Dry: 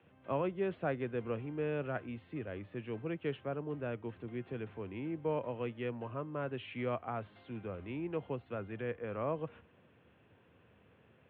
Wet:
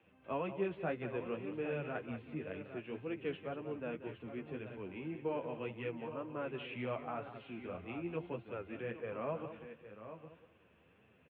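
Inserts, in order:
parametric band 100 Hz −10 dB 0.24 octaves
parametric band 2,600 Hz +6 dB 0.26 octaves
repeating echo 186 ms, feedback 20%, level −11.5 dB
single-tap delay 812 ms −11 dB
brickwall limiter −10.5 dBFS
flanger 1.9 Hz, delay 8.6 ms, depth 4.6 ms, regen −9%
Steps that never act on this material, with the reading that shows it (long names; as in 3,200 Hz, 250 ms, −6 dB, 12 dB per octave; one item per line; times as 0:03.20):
brickwall limiter −10.5 dBFS: peak of its input −21.5 dBFS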